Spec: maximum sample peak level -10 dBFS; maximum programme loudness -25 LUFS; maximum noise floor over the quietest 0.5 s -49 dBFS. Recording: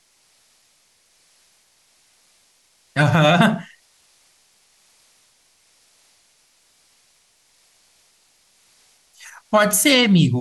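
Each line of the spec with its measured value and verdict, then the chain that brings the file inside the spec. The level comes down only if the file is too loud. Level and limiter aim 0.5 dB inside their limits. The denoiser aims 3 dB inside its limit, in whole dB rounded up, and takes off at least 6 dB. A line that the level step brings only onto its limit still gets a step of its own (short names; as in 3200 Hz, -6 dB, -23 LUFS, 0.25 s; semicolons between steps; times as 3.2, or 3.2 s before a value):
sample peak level -4.5 dBFS: fail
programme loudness -16.0 LUFS: fail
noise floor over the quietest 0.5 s -60 dBFS: OK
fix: gain -9.5 dB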